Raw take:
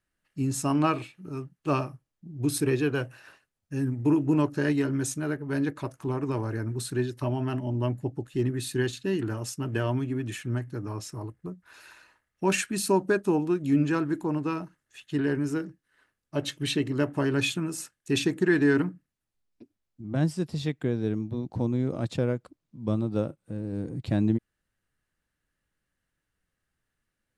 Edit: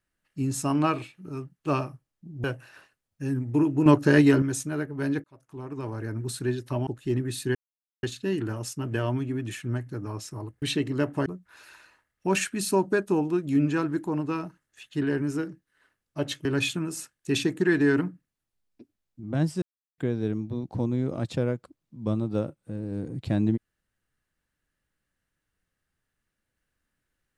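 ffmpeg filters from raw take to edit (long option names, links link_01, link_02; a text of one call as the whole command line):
ffmpeg -i in.wav -filter_complex "[0:a]asplit=12[link_01][link_02][link_03][link_04][link_05][link_06][link_07][link_08][link_09][link_10][link_11][link_12];[link_01]atrim=end=2.442[link_13];[link_02]atrim=start=2.948:end=4.372[link_14];[link_03]atrim=start=4.368:end=4.932,asetpts=PTS-STARTPTS,volume=7.5dB[link_15];[link_04]atrim=start=4.928:end=5.75,asetpts=PTS-STARTPTS,afade=type=out:start_time=0.818:duration=0.004:curve=hsin[link_16];[link_05]atrim=start=5.75:end=7.382,asetpts=PTS-STARTPTS,afade=type=in:duration=1.02[link_17];[link_06]atrim=start=8.158:end=8.84,asetpts=PTS-STARTPTS,afade=type=out:start_time=0.678:duration=0.004:curve=hsin,apad=pad_dur=0.48[link_18];[link_07]atrim=start=8.84:end=11.432,asetpts=PTS-STARTPTS,afade=type=in:duration=0.004:curve=hsin[link_19];[link_08]atrim=start=16.618:end=17.262[link_20];[link_09]atrim=start=11.428:end=16.622[link_21];[link_10]atrim=start=17.258:end=20.43,asetpts=PTS-STARTPTS,afade=type=out:start_time=3.168:duration=0.004:curve=hsin[link_22];[link_11]atrim=start=20.43:end=20.79,asetpts=PTS-STARTPTS,volume=0[link_23];[link_12]atrim=start=20.79,asetpts=PTS-STARTPTS,afade=type=in:duration=0.004:curve=hsin[link_24];[link_13][link_14]acrossfade=duration=0.004:curve1=hsin:curve2=hsin[link_25];[link_25][link_15]acrossfade=duration=0.004:curve1=hsin:curve2=hsin[link_26];[link_16][link_17]concat=n=2:v=0:a=1[link_27];[link_26][link_27]acrossfade=duration=0.004:curve1=hsin:curve2=hsin[link_28];[link_18][link_19]concat=n=2:v=0:a=1[link_29];[link_28][link_29]acrossfade=duration=0.004:curve1=hsin:curve2=hsin[link_30];[link_30][link_20]acrossfade=duration=0.004:curve1=hsin:curve2=hsin[link_31];[link_31][link_21]acrossfade=duration=0.004:curve1=hsin:curve2=hsin[link_32];[link_22][link_23][link_24]concat=n=3:v=0:a=1[link_33];[link_32][link_33]acrossfade=duration=0.004:curve1=hsin:curve2=hsin" out.wav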